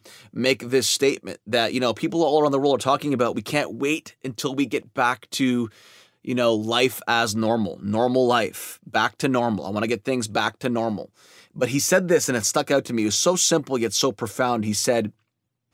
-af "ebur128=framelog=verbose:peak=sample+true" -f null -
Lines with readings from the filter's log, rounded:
Integrated loudness:
  I:         -22.3 LUFS
  Threshold: -32.6 LUFS
Loudness range:
  LRA:         3.5 LU
  Threshold: -42.7 LUFS
  LRA low:   -24.7 LUFS
  LRA high:  -21.1 LUFS
Sample peak:
  Peak:       -4.7 dBFS
True peak:
  Peak:       -4.7 dBFS